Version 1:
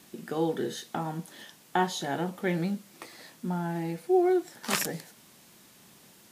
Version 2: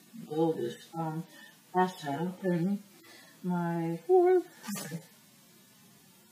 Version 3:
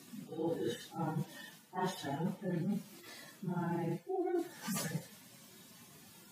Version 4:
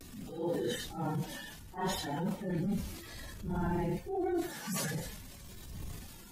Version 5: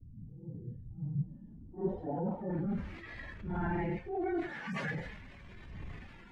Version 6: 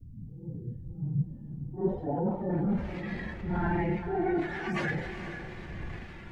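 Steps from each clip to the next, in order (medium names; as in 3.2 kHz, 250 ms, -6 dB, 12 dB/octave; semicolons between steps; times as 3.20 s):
harmonic-percussive separation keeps harmonic
phase randomisation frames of 50 ms; reverse; compression 10:1, threshold -35 dBFS, peak gain reduction 16.5 dB; reverse; trim +2 dB
wind noise 88 Hz -51 dBFS; vibrato 0.57 Hz 49 cents; transient shaper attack -5 dB, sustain +6 dB; trim +3 dB
low-pass sweep 120 Hz -> 2.1 kHz, 1.15–2.95 s; trim -1.5 dB
echo that smears into a reverb 457 ms, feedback 50%, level -9.5 dB; trim +5 dB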